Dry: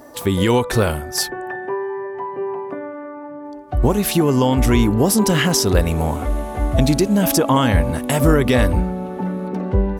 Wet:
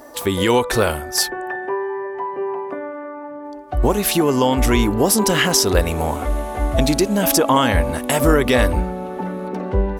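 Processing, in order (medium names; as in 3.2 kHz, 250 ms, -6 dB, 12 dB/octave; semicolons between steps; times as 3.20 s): peaking EQ 130 Hz -9 dB 1.9 oct; trim +2.5 dB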